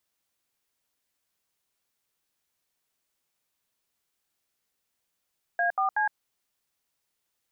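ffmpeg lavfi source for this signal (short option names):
-f lavfi -i "aevalsrc='0.0562*clip(min(mod(t,0.187),0.113-mod(t,0.187))/0.002,0,1)*(eq(floor(t/0.187),0)*(sin(2*PI*697*mod(t,0.187))+sin(2*PI*1633*mod(t,0.187)))+eq(floor(t/0.187),1)*(sin(2*PI*770*mod(t,0.187))+sin(2*PI*1209*mod(t,0.187)))+eq(floor(t/0.187),2)*(sin(2*PI*852*mod(t,0.187))+sin(2*PI*1633*mod(t,0.187))))':d=0.561:s=44100"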